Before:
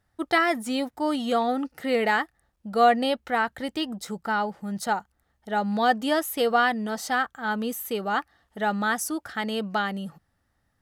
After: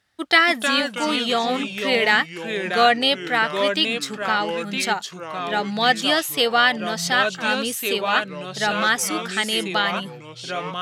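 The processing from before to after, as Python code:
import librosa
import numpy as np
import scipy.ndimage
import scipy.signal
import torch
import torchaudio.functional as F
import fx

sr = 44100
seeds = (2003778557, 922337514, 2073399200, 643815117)

y = fx.echo_pitch(x, sr, ms=249, semitones=-3, count=3, db_per_echo=-6.0)
y = fx.weighting(y, sr, curve='D')
y = F.gain(torch.from_numpy(y), 1.5).numpy()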